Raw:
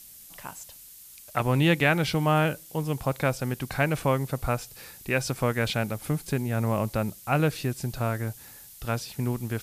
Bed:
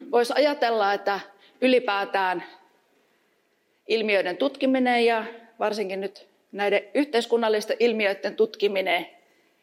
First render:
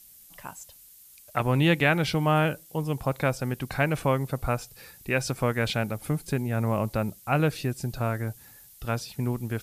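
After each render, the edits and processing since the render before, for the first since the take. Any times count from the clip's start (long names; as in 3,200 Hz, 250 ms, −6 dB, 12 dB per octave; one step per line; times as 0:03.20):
broadband denoise 6 dB, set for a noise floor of −48 dBFS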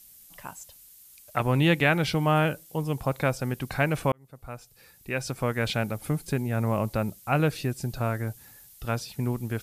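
0:04.12–0:05.78: fade in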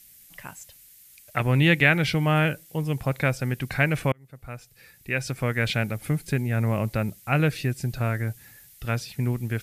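octave-band graphic EQ 125/1,000/2,000 Hz +4/−5/+8 dB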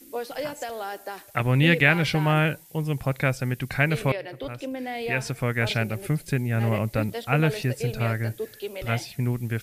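mix in bed −11 dB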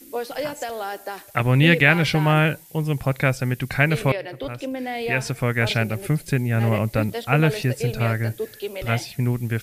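level +3.5 dB
brickwall limiter −2 dBFS, peak gain reduction 1 dB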